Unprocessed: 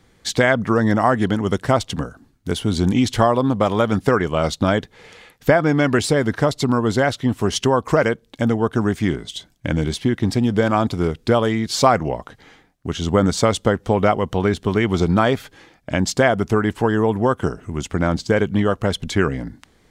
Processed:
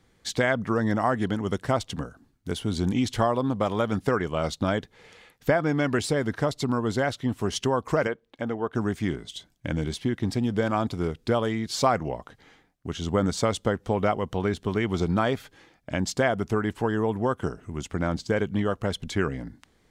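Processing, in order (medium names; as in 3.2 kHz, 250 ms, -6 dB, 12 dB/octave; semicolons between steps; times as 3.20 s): 8.07–8.75 s: tone controls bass -9 dB, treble -13 dB; trim -7.5 dB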